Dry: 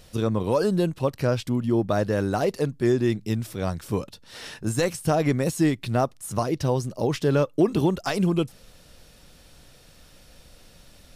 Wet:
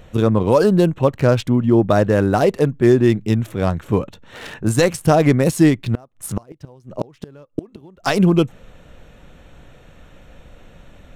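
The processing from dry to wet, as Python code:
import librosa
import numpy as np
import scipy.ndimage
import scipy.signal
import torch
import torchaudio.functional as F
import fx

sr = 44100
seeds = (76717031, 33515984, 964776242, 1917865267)

y = fx.wiener(x, sr, points=9)
y = fx.gate_flip(y, sr, shuts_db=-17.0, range_db=-30, at=(5.81, 8.06), fade=0.02)
y = y * librosa.db_to_amplitude(8.5)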